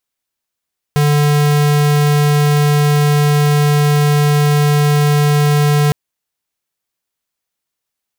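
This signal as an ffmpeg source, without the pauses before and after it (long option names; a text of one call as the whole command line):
ffmpeg -f lavfi -i "aevalsrc='0.266*(2*lt(mod(147*t,1),0.5)-1)':duration=4.96:sample_rate=44100" out.wav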